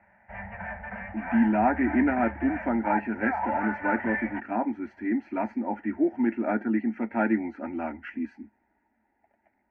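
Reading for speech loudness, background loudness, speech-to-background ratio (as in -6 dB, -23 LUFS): -28.0 LUFS, -34.0 LUFS, 6.0 dB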